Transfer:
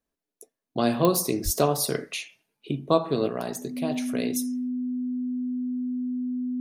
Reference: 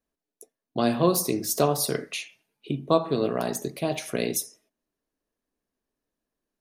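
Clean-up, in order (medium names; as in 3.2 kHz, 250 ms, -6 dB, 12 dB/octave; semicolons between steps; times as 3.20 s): de-click; band-stop 250 Hz, Q 30; 1.44–1.56 s: high-pass 140 Hz 24 dB/octave; trim 0 dB, from 3.28 s +3.5 dB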